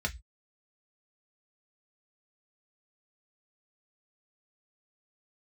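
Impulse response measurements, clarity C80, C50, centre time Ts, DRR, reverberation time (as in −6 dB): 30.5 dB, 20.5 dB, 7 ms, 1.5 dB, 0.10 s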